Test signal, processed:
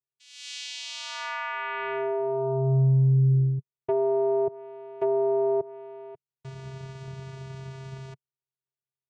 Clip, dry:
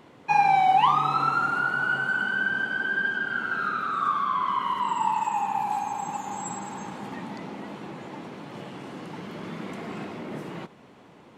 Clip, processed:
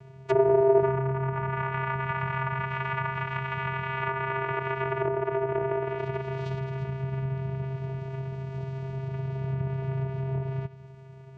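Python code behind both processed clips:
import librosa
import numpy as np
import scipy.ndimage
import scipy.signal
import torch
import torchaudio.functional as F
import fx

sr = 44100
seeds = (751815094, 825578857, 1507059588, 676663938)

y = fx.vocoder(x, sr, bands=4, carrier='square', carrier_hz=133.0)
y = fx.env_lowpass_down(y, sr, base_hz=730.0, full_db=-21.0)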